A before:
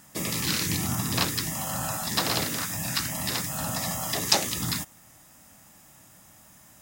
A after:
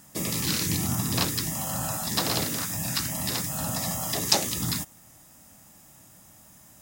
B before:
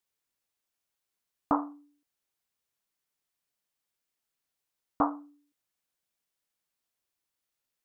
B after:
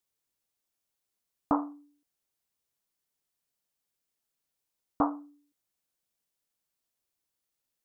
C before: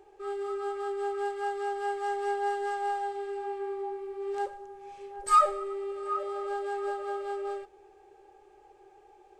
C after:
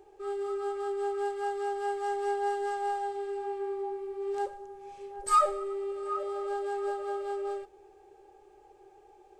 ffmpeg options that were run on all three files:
-af "equalizer=f=1800:t=o:w=2.4:g=-4.5,volume=1.19"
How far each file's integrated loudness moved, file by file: +0.5 LU, -0.5 LU, -1.0 LU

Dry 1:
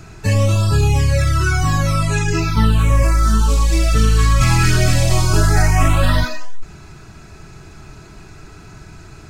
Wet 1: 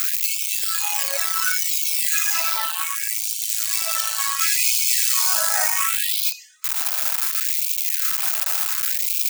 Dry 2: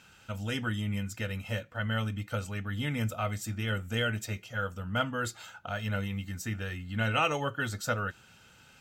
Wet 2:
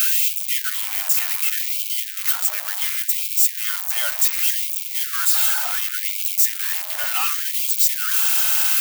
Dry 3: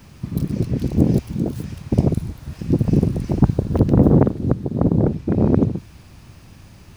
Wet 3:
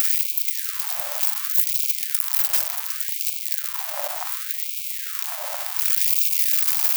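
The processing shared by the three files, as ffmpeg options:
-af "aeval=exprs='val(0)+0.5*0.141*sgn(val(0))':c=same,aemphasis=mode=production:type=bsi,afftfilt=real='re*gte(b*sr/1024,540*pow(2200/540,0.5+0.5*sin(2*PI*0.68*pts/sr)))':imag='im*gte(b*sr/1024,540*pow(2200/540,0.5+0.5*sin(2*PI*0.68*pts/sr)))':win_size=1024:overlap=0.75,volume=0.501"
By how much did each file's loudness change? -3.0 LU, +15.0 LU, -1.5 LU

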